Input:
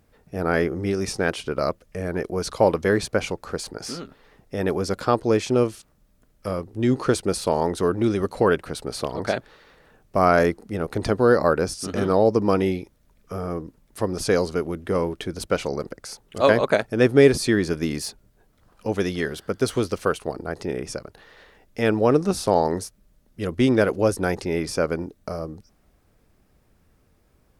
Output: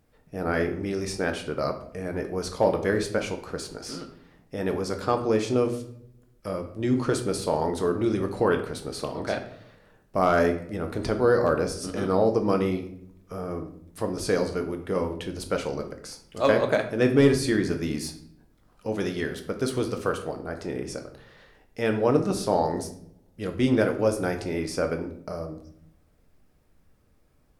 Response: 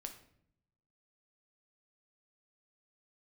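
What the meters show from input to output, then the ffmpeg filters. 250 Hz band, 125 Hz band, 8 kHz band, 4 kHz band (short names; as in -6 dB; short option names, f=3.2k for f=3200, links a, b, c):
-3.0 dB, -3.5 dB, -4.0 dB, -4.0 dB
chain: -filter_complex "[0:a]asoftclip=type=hard:threshold=-5.5dB[a];[1:a]atrim=start_sample=2205[b];[a][b]afir=irnorm=-1:irlink=0"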